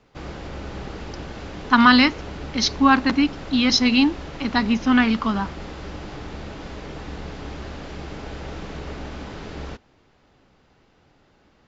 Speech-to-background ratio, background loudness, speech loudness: 17.0 dB, -35.5 LUFS, -18.5 LUFS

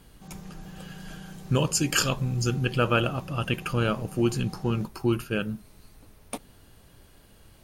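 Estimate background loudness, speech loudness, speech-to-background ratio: -44.5 LUFS, -27.0 LUFS, 17.5 dB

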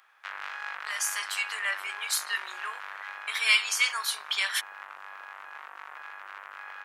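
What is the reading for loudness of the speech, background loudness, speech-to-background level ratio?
-27.5 LUFS, -40.0 LUFS, 12.5 dB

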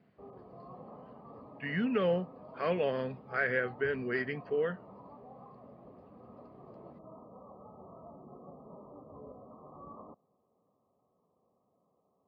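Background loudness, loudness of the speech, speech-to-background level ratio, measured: -52.0 LUFS, -33.0 LUFS, 19.0 dB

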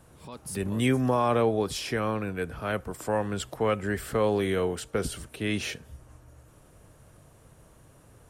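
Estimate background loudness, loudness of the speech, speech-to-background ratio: -43.0 LUFS, -28.5 LUFS, 14.5 dB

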